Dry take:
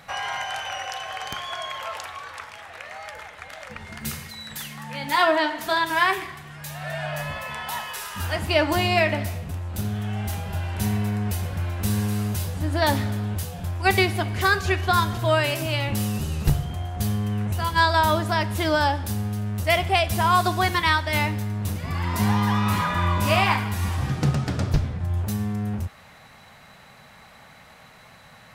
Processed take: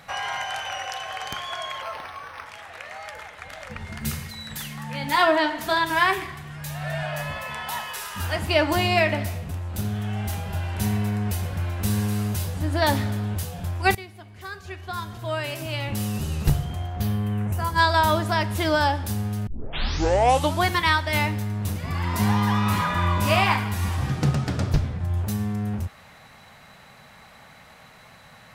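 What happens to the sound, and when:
0:01.82–0:02.46: linearly interpolated sample-rate reduction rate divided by 6×
0:03.45–0:07.03: low-shelf EQ 170 Hz +8 dB
0:13.95–0:16.31: fade in quadratic, from −20 dB
0:16.85–0:17.78: parametric band 11,000 Hz → 2,800 Hz −10.5 dB 1 octave
0:19.47: tape start 1.19 s

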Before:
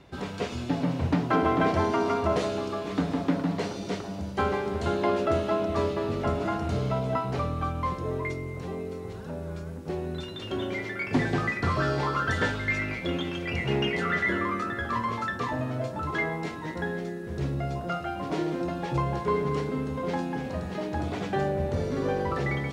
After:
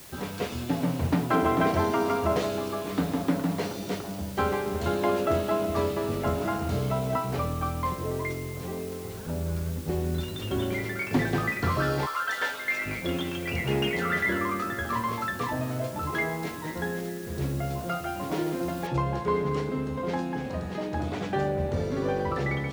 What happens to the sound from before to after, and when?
0:09.27–0:11.01: low-shelf EQ 150 Hz +11 dB
0:12.05–0:12.85: high-pass filter 1,100 Hz → 450 Hz
0:18.87: noise floor change −48 dB −68 dB

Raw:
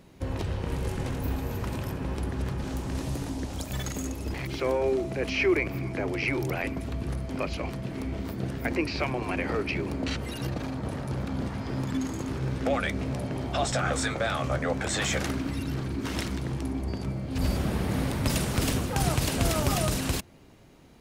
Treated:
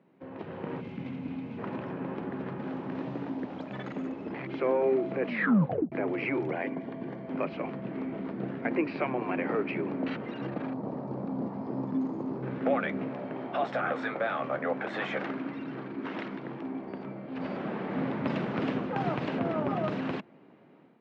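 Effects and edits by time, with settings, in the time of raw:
0:00.81–0:01.59: gain on a spectral selection 320–2,000 Hz −10 dB
0:04.00–0:04.66: delay throw 520 ms, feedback 65%, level −12.5 dB
0:05.27: tape stop 0.65 s
0:06.51–0:07.27: notch comb filter 1,300 Hz
0:10.73–0:12.43: flat-topped bell 2,200 Hz −12 dB
0:13.08–0:17.96: low-shelf EQ 240 Hz −8.5 dB
0:19.39–0:19.84: high-shelf EQ 2,400 Hz −10.5 dB
whole clip: Bessel low-pass filter 1,800 Hz, order 4; automatic gain control gain up to 8.5 dB; high-pass filter 170 Hz 24 dB per octave; level −8 dB

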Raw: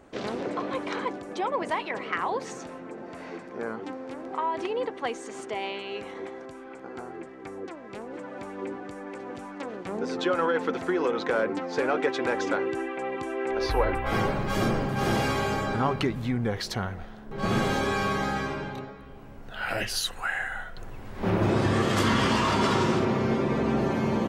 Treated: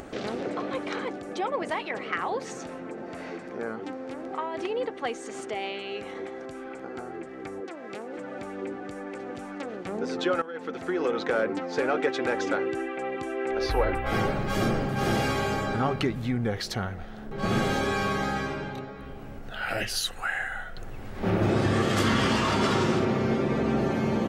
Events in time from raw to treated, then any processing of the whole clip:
0:07.60–0:08.17: Bessel high-pass filter 240 Hz
0:10.42–0:11.10: fade in, from −18 dB
whole clip: notch filter 1,000 Hz, Q 8.2; upward compression, threshold −32 dBFS

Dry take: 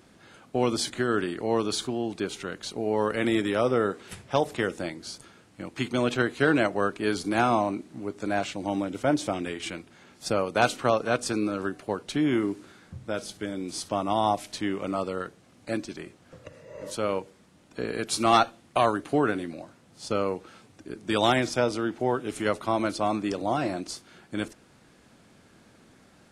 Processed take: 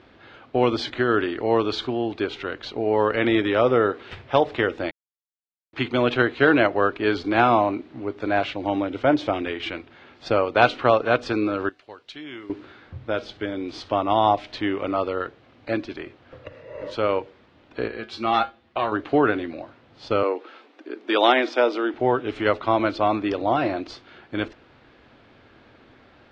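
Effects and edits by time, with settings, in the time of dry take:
0:04.91–0:05.73: silence
0:11.69–0:12.50: first-order pre-emphasis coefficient 0.9
0:17.88–0:18.92: tuned comb filter 73 Hz, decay 0.17 s, harmonics odd, mix 80%
0:20.23–0:21.94: Butterworth high-pass 260 Hz
whole clip: low-pass filter 3,800 Hz 24 dB per octave; parametric band 180 Hz −13 dB 0.51 octaves; level +6 dB

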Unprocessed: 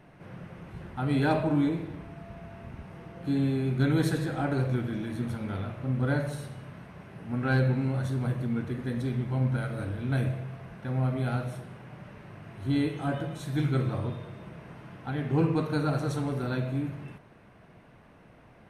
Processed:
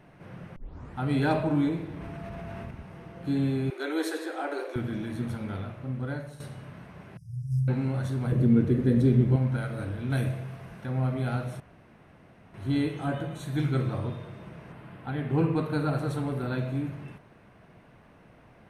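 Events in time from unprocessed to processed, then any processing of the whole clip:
0:00.56: tape start 0.40 s
0:01.89–0:02.71: envelope flattener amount 100%
0:03.70–0:04.76: Butterworth high-pass 310 Hz 72 dB per octave
0:05.39–0:06.40: fade out, to −11.5 dB
0:07.17–0:07.68: linear-phase brick-wall band-stop 160–4,800 Hz
0:08.32–0:09.36: low shelf with overshoot 590 Hz +8.5 dB, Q 1.5
0:10.10–0:10.86: high-shelf EQ 5,100 Hz +8 dB
0:11.60–0:12.54: fill with room tone
0:13.05–0:13.60: notch filter 5,200 Hz, Q 5.5
0:14.72–0:16.58: parametric band 6,000 Hz −9 dB 0.65 octaves

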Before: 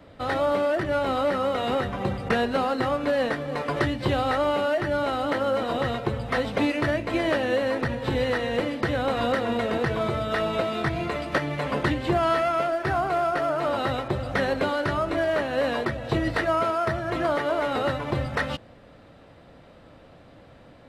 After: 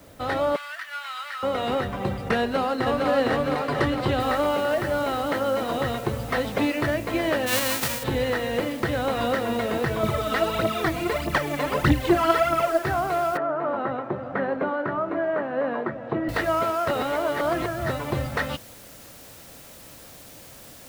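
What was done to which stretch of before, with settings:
0:00.56–0:01.43: high-pass filter 1,300 Hz 24 dB per octave
0:02.40–0:03.08: delay throw 460 ms, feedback 70%, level −2 dB
0:04.20: noise floor change −58 dB −47 dB
0:07.46–0:08.02: spectral envelope flattened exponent 0.3
0:10.03–0:12.79: phase shifter 1.6 Hz, delay 4.1 ms, feedback 66%
0:13.37–0:16.29: Chebyshev band-pass filter 190–1,400 Hz
0:16.88–0:17.90: reverse

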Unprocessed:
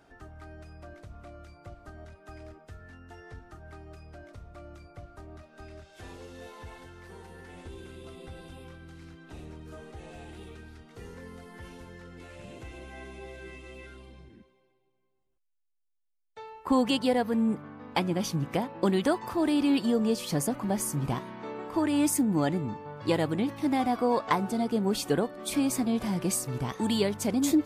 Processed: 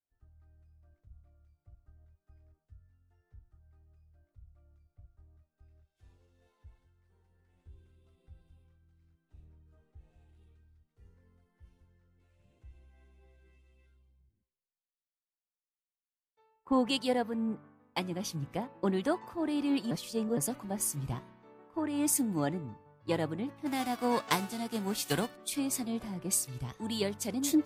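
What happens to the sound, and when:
0:19.91–0:20.37: reverse
0:23.65–0:25.35: spectral envelope flattened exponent 0.6
whole clip: multiband upward and downward expander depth 100%; level −8 dB

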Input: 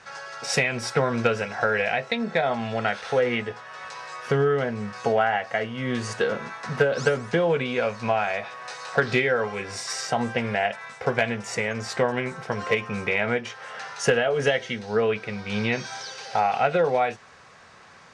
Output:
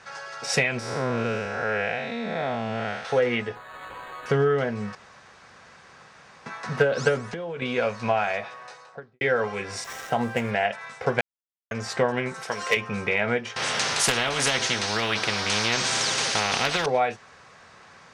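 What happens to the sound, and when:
0:00.79–0:03.05: spectrum smeared in time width 212 ms
0:03.55–0:04.26: linearly interpolated sample-rate reduction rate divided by 8×
0:04.95–0:06.46: fill with room tone
0:07.20–0:07.62: downward compressor, threshold −30 dBFS
0:08.32–0:09.21: fade out and dull
0:09.84–0:10.51: running median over 9 samples
0:11.21–0:11.71: silence
0:12.34–0:12.77: RIAA equalisation recording
0:13.56–0:16.86: every bin compressed towards the loudest bin 4 to 1

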